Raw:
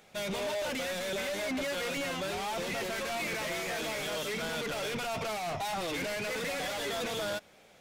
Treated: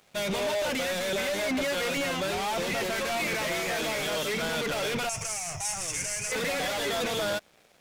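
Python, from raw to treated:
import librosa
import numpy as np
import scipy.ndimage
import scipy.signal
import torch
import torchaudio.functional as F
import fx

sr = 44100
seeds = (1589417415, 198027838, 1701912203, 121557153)

y = fx.curve_eq(x, sr, hz=(130.0, 230.0, 2600.0, 3900.0, 5900.0, 9700.0, 15000.0), db=(0, -17, -4, -14, 11, 12, -13), at=(5.09, 6.32))
y = np.sign(y) * np.maximum(np.abs(y) - 10.0 ** (-59.5 / 20.0), 0.0)
y = y * 10.0 ** (5.5 / 20.0)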